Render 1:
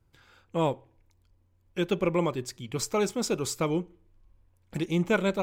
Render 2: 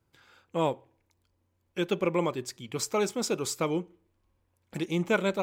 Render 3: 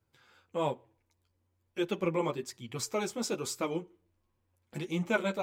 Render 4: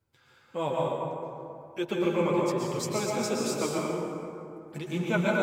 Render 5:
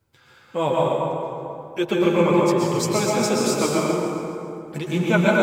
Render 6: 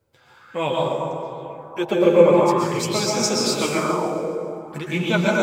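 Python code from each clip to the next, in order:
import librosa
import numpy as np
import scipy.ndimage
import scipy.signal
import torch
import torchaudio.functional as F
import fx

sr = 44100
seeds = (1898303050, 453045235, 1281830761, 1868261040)

y1 = fx.highpass(x, sr, hz=190.0, slope=6)
y2 = fx.chorus_voices(y1, sr, voices=2, hz=1.1, base_ms=11, depth_ms=3.0, mix_pct=40)
y2 = y2 * 10.0 ** (-1.0 / 20.0)
y3 = fx.rev_plate(y2, sr, seeds[0], rt60_s=2.7, hf_ratio=0.45, predelay_ms=105, drr_db=-3.5)
y4 = fx.echo_feedback(y3, sr, ms=137, feedback_pct=56, wet_db=-10.5)
y4 = y4 * 10.0 ** (8.0 / 20.0)
y5 = fx.bell_lfo(y4, sr, hz=0.46, low_hz=510.0, high_hz=5900.0, db=11)
y5 = y5 * 10.0 ** (-2.0 / 20.0)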